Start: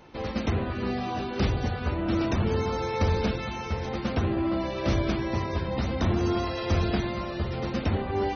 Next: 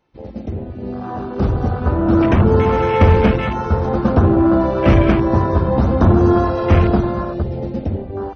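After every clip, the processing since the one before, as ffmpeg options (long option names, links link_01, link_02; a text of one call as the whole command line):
ffmpeg -i in.wav -af "dynaudnorm=framelen=450:gausssize=7:maxgain=15.5dB,afwtdn=0.0708,volume=1dB" out.wav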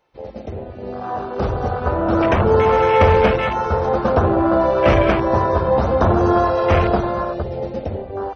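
ffmpeg -i in.wav -af "lowshelf=frequency=380:width_type=q:width=1.5:gain=-7.5,volume=2dB" out.wav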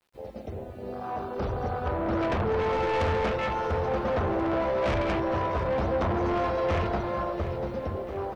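ffmpeg -i in.wav -af "acrusher=bits=9:mix=0:aa=0.000001,asoftclip=type=tanh:threshold=-16dB,aecho=1:1:692|1384|2076|2768|3460|4152:0.251|0.146|0.0845|0.049|0.0284|0.0165,volume=-7dB" out.wav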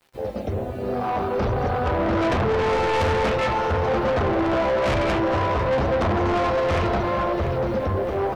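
ffmpeg -i in.wav -filter_complex "[0:a]asplit=2[link_01][link_02];[link_02]alimiter=level_in=3dB:limit=-24dB:level=0:latency=1,volume=-3dB,volume=2.5dB[link_03];[link_01][link_03]amix=inputs=2:normalize=0,flanger=delay=7.2:depth=3.3:regen=70:speed=1.2:shape=sinusoidal,asoftclip=type=tanh:threshold=-26dB,volume=8.5dB" out.wav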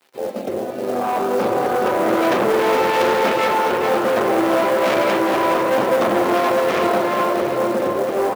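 ffmpeg -i in.wav -filter_complex "[0:a]aecho=1:1:421:0.447,acrossover=split=180|3500[link_01][link_02][link_03];[link_01]aeval=exprs='val(0)*sin(2*PI*450*n/s)':channel_layout=same[link_04];[link_02]acrusher=bits=5:mode=log:mix=0:aa=0.000001[link_05];[link_04][link_05][link_03]amix=inputs=3:normalize=0,volume=4dB" out.wav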